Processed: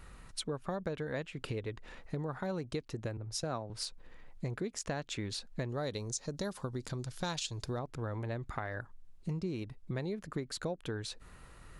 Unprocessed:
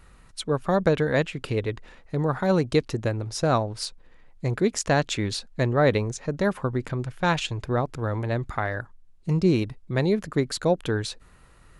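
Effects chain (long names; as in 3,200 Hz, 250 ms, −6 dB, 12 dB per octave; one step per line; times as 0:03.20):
0:05.69–0:07.79: high shelf with overshoot 3,300 Hz +10.5 dB, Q 1.5
downward compressor 5 to 1, threshold −36 dBFS, peak gain reduction 18.5 dB
0:03.17–0:03.70: multiband upward and downward expander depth 70%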